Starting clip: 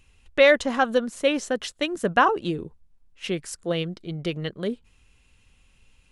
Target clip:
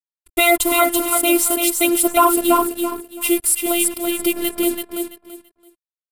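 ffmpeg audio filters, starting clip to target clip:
-filter_complex "[0:a]asplit=2[s0][s1];[s1]asoftclip=type=tanh:threshold=0.106,volume=0.501[s2];[s0][s2]amix=inputs=2:normalize=0,asuperstop=centerf=1700:order=12:qfactor=5.2,acrusher=bits=5:mix=0:aa=0.5,aresample=32000,aresample=44100,asplit=2[s3][s4];[s4]aecho=0:1:334|668|1002:0.531|0.122|0.0281[s5];[s3][s5]amix=inputs=2:normalize=0,afftfilt=real='hypot(re,im)*cos(PI*b)':imag='0':win_size=512:overlap=0.75,aexciter=amount=14.4:drive=3.3:freq=8500,acontrast=47,alimiter=level_in=1.58:limit=0.891:release=50:level=0:latency=1,volume=0.891"

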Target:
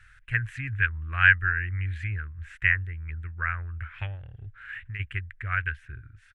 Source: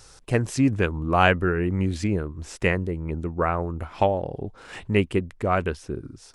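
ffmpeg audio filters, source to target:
-filter_complex "[0:a]firequalizer=gain_entry='entry(110,0);entry(180,-24);entry(480,-28);entry(850,-24);entry(1600,11);entry(5100,-25);entry(7200,-19)':delay=0.05:min_phase=1,asplit=3[s0][s1][s2];[s0]afade=t=out:st=4.15:d=0.02[s3];[s1]acompressor=threshold=0.0224:ratio=6,afade=t=in:st=4.15:d=0.02,afade=t=out:st=4.99:d=0.02[s4];[s2]afade=t=in:st=4.99:d=0.02[s5];[s3][s4][s5]amix=inputs=3:normalize=0,volume=0.794"

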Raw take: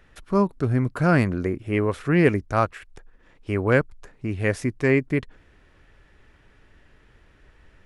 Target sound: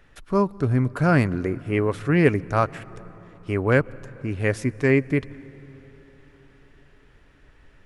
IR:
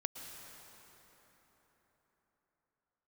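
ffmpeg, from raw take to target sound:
-filter_complex "[0:a]asplit=2[s0][s1];[1:a]atrim=start_sample=2205,lowshelf=f=220:g=6.5,adelay=7[s2];[s1][s2]afir=irnorm=-1:irlink=0,volume=0.141[s3];[s0][s3]amix=inputs=2:normalize=0"

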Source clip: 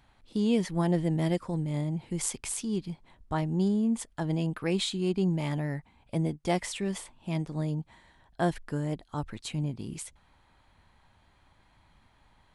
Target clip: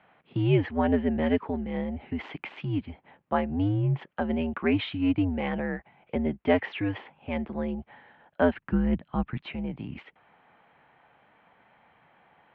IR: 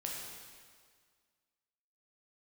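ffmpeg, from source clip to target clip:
-filter_complex "[0:a]asplit=3[s0][s1][s2];[s0]afade=t=out:st=8.52:d=0.02[s3];[s1]asubboost=boost=7.5:cutoff=200,afade=t=in:st=8.52:d=0.02,afade=t=out:st=9.41:d=0.02[s4];[s2]afade=t=in:st=9.41:d=0.02[s5];[s3][s4][s5]amix=inputs=3:normalize=0,highpass=f=250:t=q:w=0.5412,highpass=f=250:t=q:w=1.307,lowpass=f=2900:t=q:w=0.5176,lowpass=f=2900:t=q:w=0.7071,lowpass=f=2900:t=q:w=1.932,afreqshift=-92,volume=2.11"

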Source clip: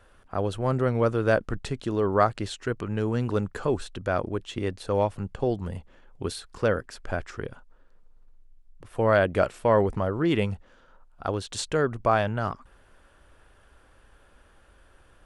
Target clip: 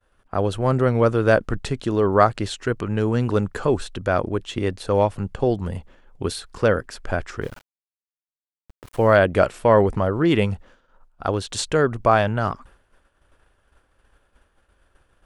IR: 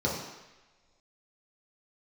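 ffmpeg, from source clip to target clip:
-filter_complex "[0:a]agate=range=0.0224:threshold=0.00447:ratio=3:detection=peak,asplit=3[s0][s1][s2];[s0]afade=t=out:st=7.41:d=0.02[s3];[s1]aeval=exprs='val(0)*gte(abs(val(0)),0.00562)':c=same,afade=t=in:st=7.41:d=0.02,afade=t=out:st=9.15:d=0.02[s4];[s2]afade=t=in:st=9.15:d=0.02[s5];[s3][s4][s5]amix=inputs=3:normalize=0,volume=1.88"

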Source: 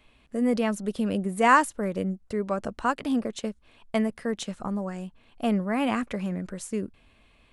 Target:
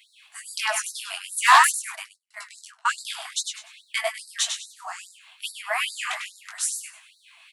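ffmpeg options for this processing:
-filter_complex "[0:a]highshelf=f=2200:g=9.5,aecho=1:1:99|198|297|396:0.501|0.14|0.0393|0.011,flanger=delay=18.5:depth=5.7:speed=2.9,asettb=1/sr,asplit=3[s0][s1][s2];[s0]atrim=end=1.954[s3];[s1]atrim=start=1.95:end=2.89,asetpts=PTS-STARTPTS,afade=t=in:d=0.004:c=qsin,afade=t=out:st=0.936:d=0.004:c=qsin,agate=range=0.0398:threshold=0.0282:ratio=16:detection=peak[s4];[s2]atrim=start=2.886[s5];[s3][s4]acrossfade=d=0.004:c1=hsin:c2=qsin[s6];[s6][s5]acrossfade=d=0.004:c1=qsin:c2=hsin,aeval=exprs='0.398*sin(PI/2*1.58*val(0)/0.398)':c=same,flanger=delay=5.9:depth=7.5:regen=-46:speed=0.58:shape=sinusoidal,afftfilt=real='re*gte(b*sr/1024,620*pow(3800/620,0.5+0.5*sin(2*PI*2.4*pts/sr)))':imag='im*gte(b*sr/1024,620*pow(3800/620,0.5+0.5*sin(2*PI*2.4*pts/sr)))':win_size=1024:overlap=0.75,volume=1.68"

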